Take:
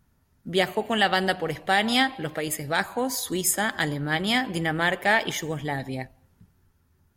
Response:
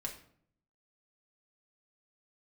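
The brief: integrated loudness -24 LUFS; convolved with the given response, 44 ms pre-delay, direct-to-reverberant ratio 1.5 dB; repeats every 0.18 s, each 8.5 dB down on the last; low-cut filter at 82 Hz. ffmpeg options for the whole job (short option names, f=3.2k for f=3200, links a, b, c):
-filter_complex "[0:a]highpass=82,aecho=1:1:180|360|540|720:0.376|0.143|0.0543|0.0206,asplit=2[a][b];[1:a]atrim=start_sample=2205,adelay=44[c];[b][c]afir=irnorm=-1:irlink=0,volume=-1dB[d];[a][d]amix=inputs=2:normalize=0,volume=-2dB"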